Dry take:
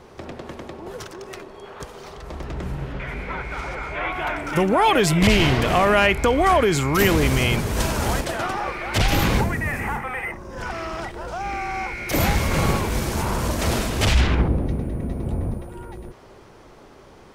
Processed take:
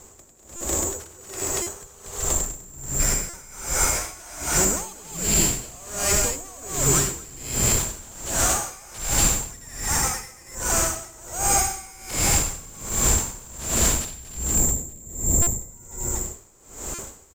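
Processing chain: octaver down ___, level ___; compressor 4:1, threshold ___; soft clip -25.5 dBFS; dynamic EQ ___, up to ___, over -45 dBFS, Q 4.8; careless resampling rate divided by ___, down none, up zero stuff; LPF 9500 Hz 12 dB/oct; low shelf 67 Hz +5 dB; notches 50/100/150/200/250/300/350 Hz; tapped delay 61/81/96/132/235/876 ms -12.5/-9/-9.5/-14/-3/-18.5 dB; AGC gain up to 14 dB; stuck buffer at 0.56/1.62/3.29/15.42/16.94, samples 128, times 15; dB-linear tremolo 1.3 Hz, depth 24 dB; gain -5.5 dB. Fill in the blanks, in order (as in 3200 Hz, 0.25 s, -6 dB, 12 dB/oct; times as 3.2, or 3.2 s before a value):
2 oct, -3 dB, -20 dBFS, 2100 Hz, -3 dB, 6×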